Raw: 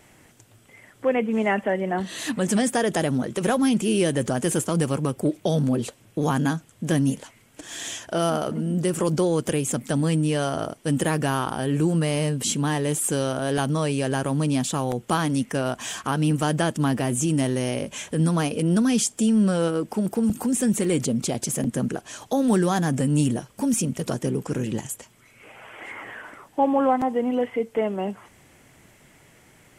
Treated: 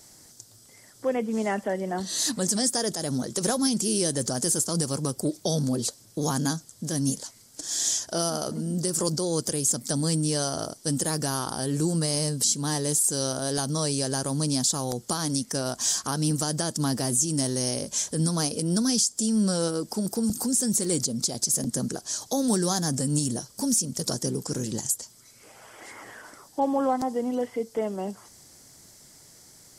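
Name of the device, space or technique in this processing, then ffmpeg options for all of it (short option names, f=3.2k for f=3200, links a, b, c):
over-bright horn tweeter: -af "highshelf=f=3.6k:t=q:w=3:g=10.5,alimiter=limit=-9dB:level=0:latency=1:release=177,volume=-4dB"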